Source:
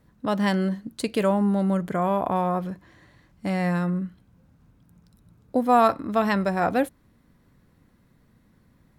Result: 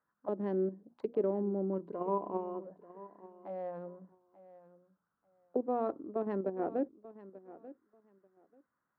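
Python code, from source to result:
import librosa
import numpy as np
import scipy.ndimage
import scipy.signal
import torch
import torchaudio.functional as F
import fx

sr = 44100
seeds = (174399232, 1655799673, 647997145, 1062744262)

p1 = fx.wiener(x, sr, points=15)
p2 = scipy.signal.sosfilt(scipy.signal.butter(2, 5300.0, 'lowpass', fs=sr, output='sos'), p1)
p3 = fx.high_shelf(p2, sr, hz=4000.0, db=-5.5)
p4 = fx.hum_notches(p3, sr, base_hz=60, count=4)
p5 = fx.level_steps(p4, sr, step_db=24)
p6 = p4 + F.gain(torch.from_numpy(p5), 2.5).numpy()
p7 = fx.small_body(p6, sr, hz=(1000.0, 2900.0), ring_ms=40, db=15, at=(1.73, 2.65))
p8 = fx.auto_wah(p7, sr, base_hz=370.0, top_hz=1400.0, q=3.3, full_db=-19.0, direction='down')
p9 = fx.echo_feedback(p8, sr, ms=888, feedback_pct=18, wet_db=-17)
y = F.gain(torch.from_numpy(p9), -7.0).numpy()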